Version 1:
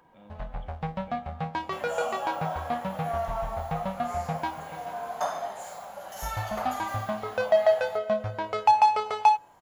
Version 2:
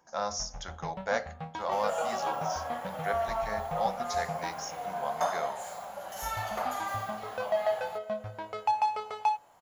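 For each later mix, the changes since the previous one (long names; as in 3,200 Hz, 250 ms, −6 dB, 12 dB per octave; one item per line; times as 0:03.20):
speech: remove formant resonators in series i
first sound −8.0 dB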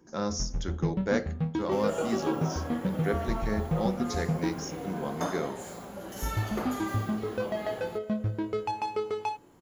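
master: add low shelf with overshoot 490 Hz +12 dB, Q 3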